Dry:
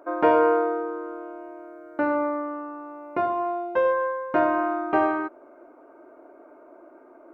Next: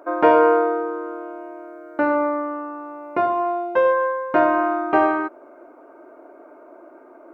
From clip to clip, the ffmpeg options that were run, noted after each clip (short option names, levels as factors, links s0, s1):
-af "lowshelf=f=210:g=-4.5,volume=1.78"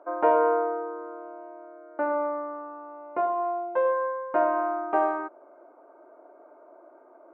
-af "bandpass=f=740:t=q:w=0.99:csg=0,volume=0.562"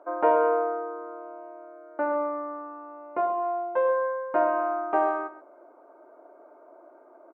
-af "aecho=1:1:130:0.2"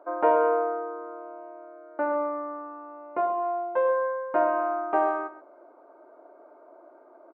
-af "aresample=11025,aresample=44100"